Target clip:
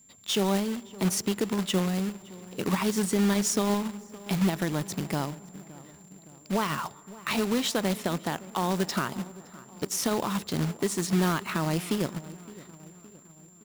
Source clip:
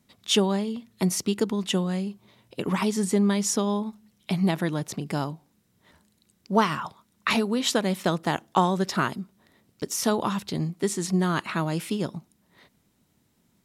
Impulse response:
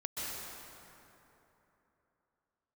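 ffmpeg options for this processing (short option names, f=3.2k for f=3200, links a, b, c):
-filter_complex "[0:a]alimiter=limit=-17.5dB:level=0:latency=1:release=100,asplit=2[a][b];[b]adelay=566,lowpass=f=1.6k:p=1,volume=-18dB,asplit=2[c][d];[d]adelay=566,lowpass=f=1.6k:p=1,volume=0.55,asplit=2[e][f];[f]adelay=566,lowpass=f=1.6k:p=1,volume=0.55,asplit=2[g][h];[h]adelay=566,lowpass=f=1.6k:p=1,volume=0.55,asplit=2[i][j];[j]adelay=566,lowpass=f=1.6k:p=1,volume=0.55[k];[a][c][e][g][i][k]amix=inputs=6:normalize=0,acrusher=bits=2:mode=log:mix=0:aa=0.000001,asplit=2[l][m];[1:a]atrim=start_sample=2205,lowpass=1.9k[n];[m][n]afir=irnorm=-1:irlink=0,volume=-25.5dB[o];[l][o]amix=inputs=2:normalize=0,aeval=exprs='val(0)+0.002*sin(2*PI*7300*n/s)':c=same,volume=-1dB"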